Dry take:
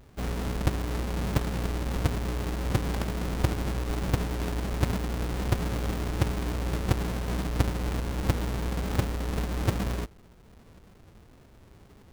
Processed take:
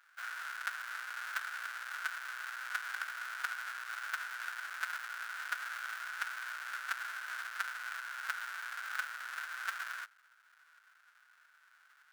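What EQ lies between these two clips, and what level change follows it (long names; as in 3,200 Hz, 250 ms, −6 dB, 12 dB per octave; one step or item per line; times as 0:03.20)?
four-pole ladder high-pass 1,400 Hz, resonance 80%
+4.5 dB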